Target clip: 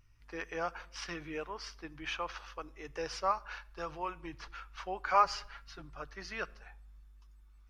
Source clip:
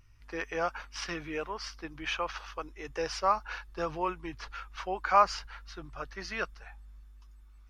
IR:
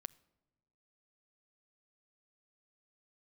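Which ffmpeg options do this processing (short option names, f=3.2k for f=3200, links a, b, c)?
-filter_complex "[0:a]asettb=1/sr,asplit=3[a][b][c];[a]atrim=end=3.314[d];[b]atrim=start=3.31:end=4.15,asetpts=PTS-STARTPTS,afade=t=in:d=0.004:c=qsin,afade=t=out:st=0.836:d=0.004:c=qsin,equalizer=f=210:t=o:w=2.3:g=-5.5[e];[c]atrim=start=4.146[f];[d][e]acrossfade=d=0.004:c1=hsin:c2=qsin[g];[g][f]acrossfade=d=0.004:c1=qsin:c2=hsin,asettb=1/sr,asplit=3[h][i][j];[h]atrim=end=5.074[k];[i]atrim=start=5.07:end=5.82,asetpts=PTS-STARTPTS,afade=t=in:d=0.004:c=qsin,afade=t=out:st=0.746:d=0.004:c=qsin,aecho=1:1:7.2:0.69,atrim=end_sample=33075[l];[j]atrim=start=5.816[m];[k][l]acrossfade=d=0.004:c1=hsin:c2=qsin[n];[n][m]acrossfade=d=0.004:c1=qsin:c2=hsin[o];[1:a]atrim=start_sample=2205,afade=t=out:st=0.41:d=0.01,atrim=end_sample=18522[p];[o][p]afir=irnorm=-1:irlink=0"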